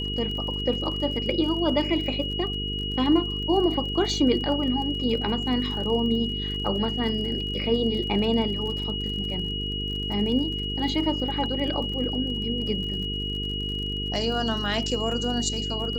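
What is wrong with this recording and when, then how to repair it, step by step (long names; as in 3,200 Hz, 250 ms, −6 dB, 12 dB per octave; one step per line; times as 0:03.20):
mains buzz 50 Hz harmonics 9 −32 dBFS
surface crackle 42 per second −34 dBFS
whistle 2,900 Hz −30 dBFS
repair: click removal
hum removal 50 Hz, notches 9
notch filter 2,900 Hz, Q 30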